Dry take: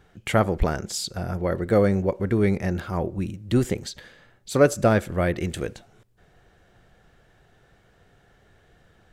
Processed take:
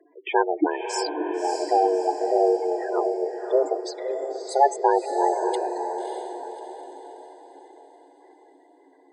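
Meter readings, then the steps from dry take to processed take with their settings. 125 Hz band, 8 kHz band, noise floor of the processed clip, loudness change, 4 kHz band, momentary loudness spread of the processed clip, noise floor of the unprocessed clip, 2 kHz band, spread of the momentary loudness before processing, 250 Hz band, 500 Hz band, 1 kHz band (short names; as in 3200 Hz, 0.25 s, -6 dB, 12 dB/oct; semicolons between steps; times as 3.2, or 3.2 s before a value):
under -40 dB, -3.0 dB, -56 dBFS, 0.0 dB, -2.0 dB, 15 LU, -60 dBFS, -3.5 dB, 11 LU, -4.5 dB, +1.5 dB, +9.5 dB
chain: frequency shift +270 Hz; spectral gate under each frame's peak -10 dB strong; diffused feedback echo 0.6 s, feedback 45%, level -6 dB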